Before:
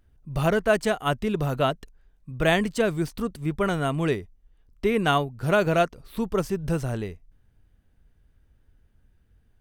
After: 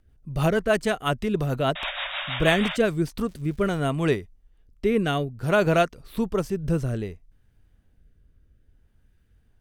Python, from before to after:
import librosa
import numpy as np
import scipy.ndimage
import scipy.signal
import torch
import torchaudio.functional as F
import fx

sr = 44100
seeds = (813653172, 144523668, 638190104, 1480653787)

y = fx.spec_paint(x, sr, seeds[0], shape='noise', start_s=1.75, length_s=1.02, low_hz=540.0, high_hz=3800.0, level_db=-31.0)
y = fx.dmg_crackle(y, sr, seeds[1], per_s=400.0, level_db=-41.0, at=(3.26, 3.79), fade=0.02)
y = fx.rotary_switch(y, sr, hz=6.3, then_hz=0.6, switch_at_s=2.52)
y = y * 10.0 ** (2.5 / 20.0)